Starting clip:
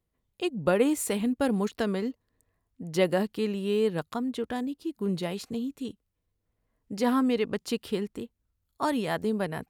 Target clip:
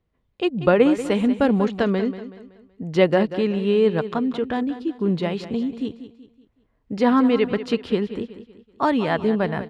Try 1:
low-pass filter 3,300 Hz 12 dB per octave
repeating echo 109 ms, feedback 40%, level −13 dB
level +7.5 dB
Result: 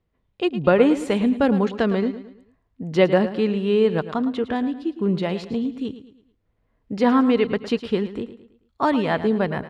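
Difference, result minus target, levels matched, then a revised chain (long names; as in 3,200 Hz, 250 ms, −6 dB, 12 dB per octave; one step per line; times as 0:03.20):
echo 79 ms early
low-pass filter 3,300 Hz 12 dB per octave
repeating echo 188 ms, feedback 40%, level −13 dB
level +7.5 dB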